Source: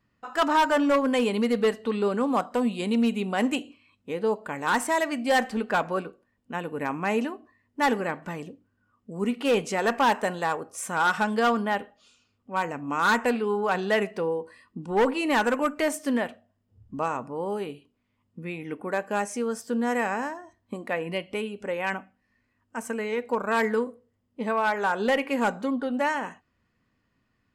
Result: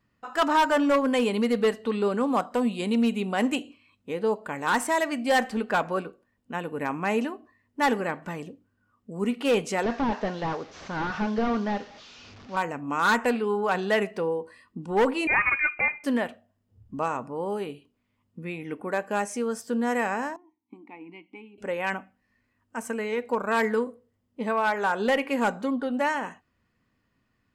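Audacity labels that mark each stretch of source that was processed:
9.830000	12.570000	one-bit delta coder 32 kbps, step -42 dBFS
15.270000	16.040000	frequency inversion carrier 2.7 kHz
20.360000	21.580000	vowel filter u

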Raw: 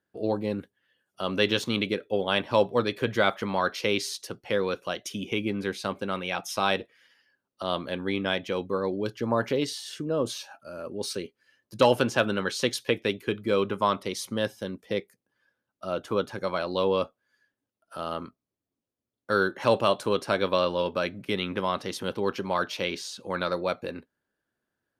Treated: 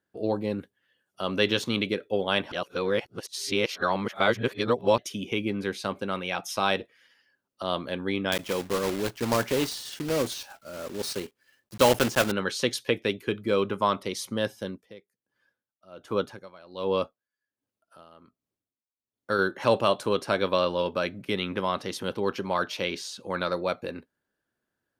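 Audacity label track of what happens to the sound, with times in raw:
2.520000	4.980000	reverse
8.320000	12.330000	block-companded coder 3-bit
14.660000	19.390000	logarithmic tremolo 1.3 Hz, depth 21 dB

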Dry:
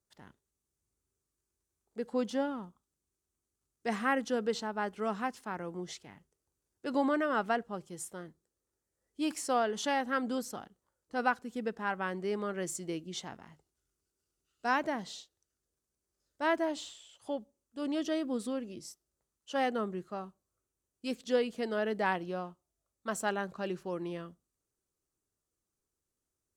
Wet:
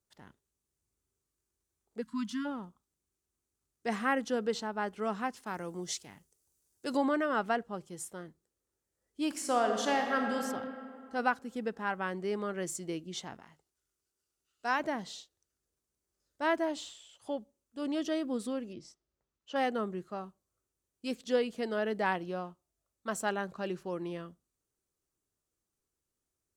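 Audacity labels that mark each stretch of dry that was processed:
2.010000	2.460000	spectral selection erased 290–940 Hz
5.460000	6.970000	tone controls bass 0 dB, treble +12 dB
9.280000	10.390000	reverb throw, RT60 2.4 s, DRR 3 dB
13.400000	14.800000	bass shelf 390 Hz -7.5 dB
18.730000	19.560000	distance through air 110 m

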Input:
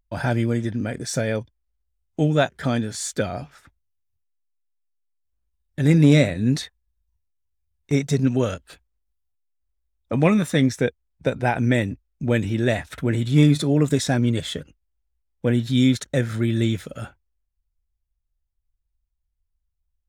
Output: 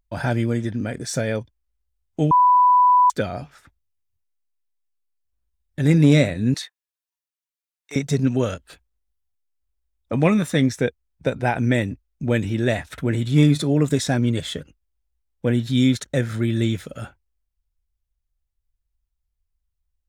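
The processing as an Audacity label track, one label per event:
2.310000	3.100000	bleep 993 Hz -11 dBFS
6.540000	7.960000	Bessel high-pass 1.1 kHz

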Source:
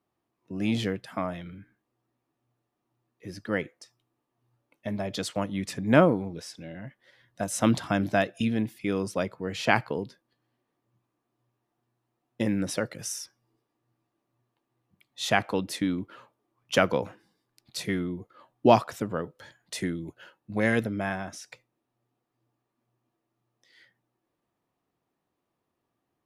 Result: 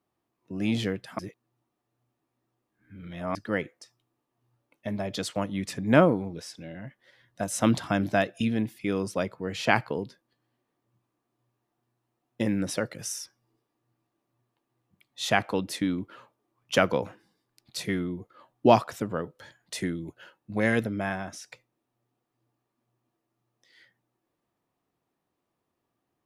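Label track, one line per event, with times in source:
1.190000	3.350000	reverse

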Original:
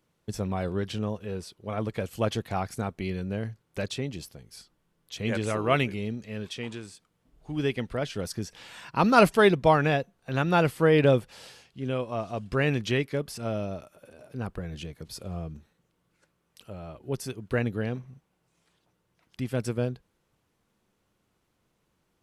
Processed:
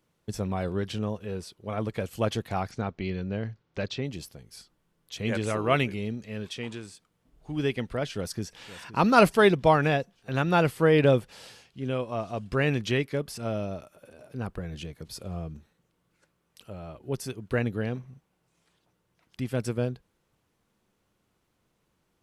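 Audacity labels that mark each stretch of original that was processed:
2.710000	4.050000	low-pass 5.5 kHz 24 dB/octave
8.070000	8.590000	echo throw 520 ms, feedback 65%, level -16 dB

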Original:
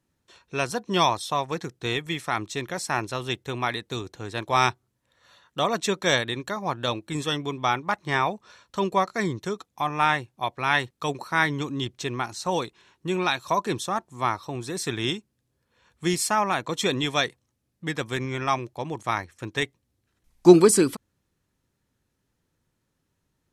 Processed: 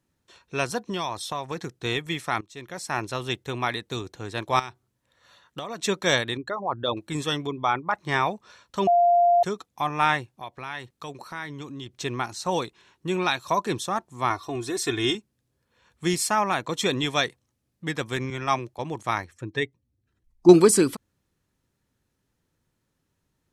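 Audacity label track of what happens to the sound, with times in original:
0.870000	1.710000	compression 4:1, threshold -26 dBFS
2.410000	3.100000	fade in, from -20.5 dB
4.590000	5.810000	compression 16:1, threshold -29 dBFS
6.370000	6.970000	resonances exaggerated exponent 2
7.470000	7.950000	resonances exaggerated exponent 1.5
8.870000	9.430000	bleep 697 Hz -15 dBFS
10.300000	11.950000	compression 2:1, threshold -40 dBFS
14.300000	15.150000	comb 2.8 ms, depth 74%
18.300000	18.790000	three bands expanded up and down depth 40%
19.320000	20.490000	spectral contrast enhancement exponent 1.5

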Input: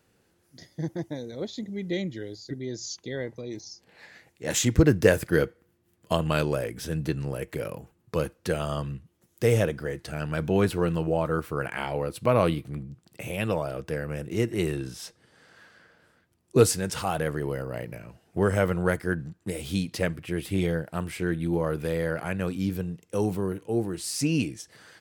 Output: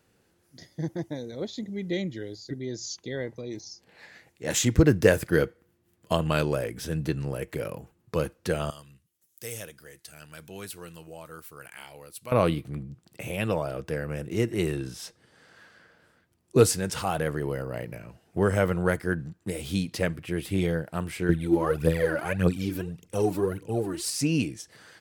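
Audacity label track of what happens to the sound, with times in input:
8.700000	12.320000	pre-emphasis filter coefficient 0.9
21.290000	24.100000	phaser 1.7 Hz, delay 3.6 ms, feedback 70%

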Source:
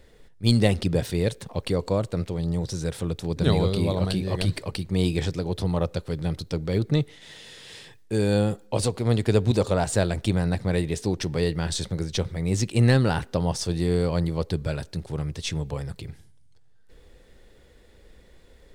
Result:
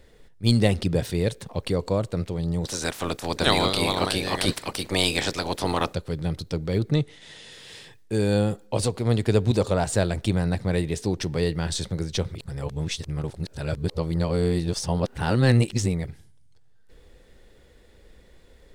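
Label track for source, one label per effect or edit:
2.640000	5.930000	spectral peaks clipped ceiling under each frame's peak by 23 dB
6.950000	7.520000	careless resampling rate divided by 2×, down none, up filtered
12.350000	16.050000	reverse

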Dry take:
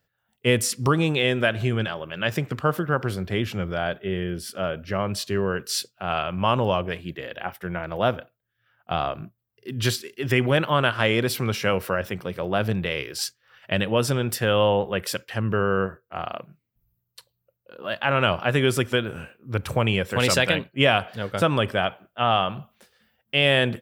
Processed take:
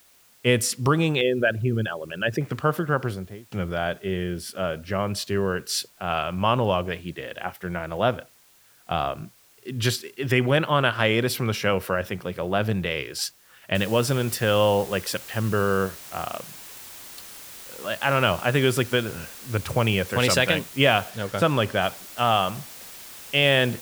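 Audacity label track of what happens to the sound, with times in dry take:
1.210000	2.410000	resonances exaggerated exponent 2
2.970000	3.520000	studio fade out
13.750000	13.750000	noise floor step -57 dB -42 dB
21.100000	21.820000	treble shelf 9.1 kHz -5.5 dB

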